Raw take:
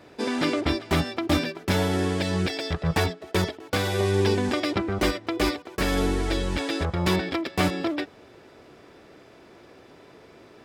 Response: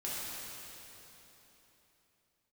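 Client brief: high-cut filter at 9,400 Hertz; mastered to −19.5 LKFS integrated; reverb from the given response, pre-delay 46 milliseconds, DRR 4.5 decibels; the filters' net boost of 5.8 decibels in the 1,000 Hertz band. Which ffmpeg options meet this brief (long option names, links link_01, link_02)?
-filter_complex "[0:a]lowpass=9400,equalizer=frequency=1000:width_type=o:gain=7.5,asplit=2[link_01][link_02];[1:a]atrim=start_sample=2205,adelay=46[link_03];[link_02][link_03]afir=irnorm=-1:irlink=0,volume=-8.5dB[link_04];[link_01][link_04]amix=inputs=2:normalize=0,volume=3.5dB"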